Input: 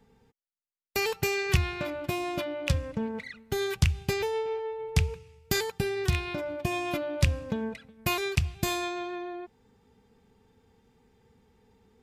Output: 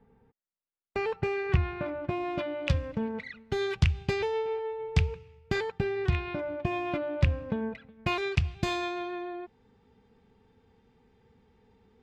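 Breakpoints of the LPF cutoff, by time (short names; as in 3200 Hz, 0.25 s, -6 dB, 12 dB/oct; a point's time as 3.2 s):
2.09 s 1700 Hz
2.63 s 4000 Hz
4.99 s 4000 Hz
5.62 s 2400 Hz
7.67 s 2400 Hz
8.54 s 4200 Hz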